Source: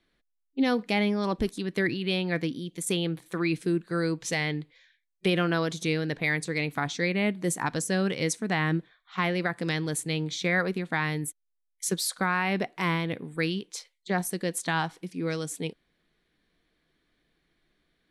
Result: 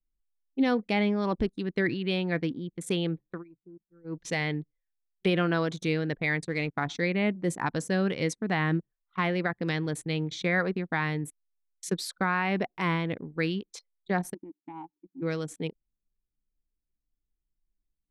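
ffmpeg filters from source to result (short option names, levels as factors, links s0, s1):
-filter_complex "[0:a]asettb=1/sr,asplit=3[s0][s1][s2];[s0]atrim=end=6.474[s3];[s1]atrim=start=6.47:end=6.88,asetpts=PTS-STARTPTS,afade=t=in:d=0.004:c=qsin,afade=t=out:st=0.406:d=0.004:c=qsin,aeval=exprs='sgn(val(0))*max(abs(val(0))-0.00224,0)':c=same[s4];[s2]atrim=start=6.876[s5];[s3][s4]acrossfade=d=0.004:c1=hsin:c2=qsin[s6];[s6][s5]acrossfade=d=0.004:c1=qsin:c2=hsin,asplit=3[s7][s8][s9];[s7]afade=t=out:st=14.33:d=0.02[s10];[s8]asplit=3[s11][s12][s13];[s11]bandpass=f=300:t=q:w=8,volume=1[s14];[s12]bandpass=f=870:t=q:w=8,volume=0.501[s15];[s13]bandpass=f=2240:t=q:w=8,volume=0.355[s16];[s14][s15][s16]amix=inputs=3:normalize=0,afade=t=in:st=14.33:d=0.02,afade=t=out:st=15.21:d=0.02[s17];[s9]afade=t=in:st=15.21:d=0.02[s18];[s10][s17][s18]amix=inputs=3:normalize=0,asplit=3[s19][s20][s21];[s19]atrim=end=3.44,asetpts=PTS-STARTPTS,afade=t=out:st=3.27:d=0.17:silence=0.0944061[s22];[s20]atrim=start=3.44:end=4.04,asetpts=PTS-STARTPTS,volume=0.0944[s23];[s21]atrim=start=4.04,asetpts=PTS-STARTPTS,afade=t=in:d=0.17:silence=0.0944061[s24];[s22][s23][s24]concat=n=3:v=0:a=1,anlmdn=1,aemphasis=mode=reproduction:type=50kf"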